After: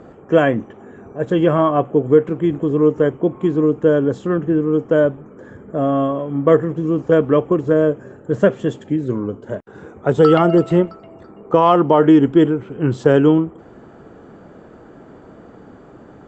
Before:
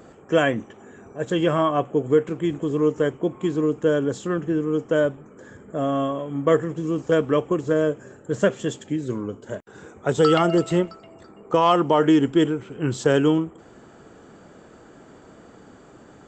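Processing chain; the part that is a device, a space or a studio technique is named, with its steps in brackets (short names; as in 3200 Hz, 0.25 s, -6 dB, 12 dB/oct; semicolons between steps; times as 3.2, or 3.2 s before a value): through cloth (LPF 6700 Hz 12 dB/oct; high shelf 2400 Hz -14 dB); gain +6.5 dB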